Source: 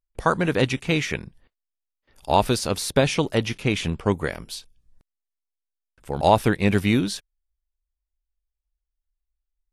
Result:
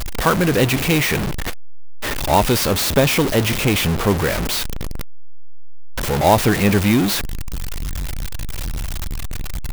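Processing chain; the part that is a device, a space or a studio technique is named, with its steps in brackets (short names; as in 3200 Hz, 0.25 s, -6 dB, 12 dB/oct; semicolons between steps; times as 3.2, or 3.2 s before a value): early CD player with a faulty converter (zero-crossing step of -17 dBFS; clock jitter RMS 0.03 ms); gain +1 dB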